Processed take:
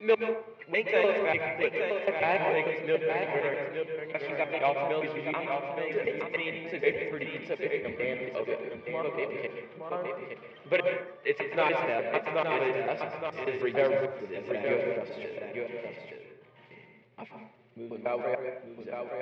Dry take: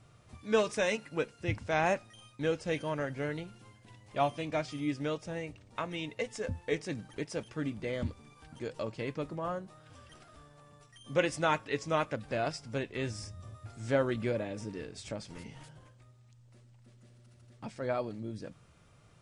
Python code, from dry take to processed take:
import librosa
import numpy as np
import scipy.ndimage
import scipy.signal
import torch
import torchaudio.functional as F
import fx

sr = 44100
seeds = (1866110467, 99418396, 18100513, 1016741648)

p1 = fx.block_reorder(x, sr, ms=148.0, group=4)
p2 = fx.wow_flutter(p1, sr, seeds[0], rate_hz=2.1, depth_cents=28.0)
p3 = (np.mod(10.0 ** (19.5 / 20.0) * p2 + 1.0, 2.0) - 1.0) / 10.0 ** (19.5 / 20.0)
p4 = p2 + (p3 * librosa.db_to_amplitude(-9.5))
p5 = fx.cabinet(p4, sr, low_hz=270.0, low_slope=12, high_hz=3200.0, hz=(280.0, 410.0, 1400.0, 2200.0), db=(-10, 7, -7, 9))
p6 = p5 + 10.0 ** (-6.0 / 20.0) * np.pad(p5, (int(869 * sr / 1000.0), 0))[:len(p5)]
y = fx.rev_plate(p6, sr, seeds[1], rt60_s=0.66, hf_ratio=0.4, predelay_ms=110, drr_db=4.0)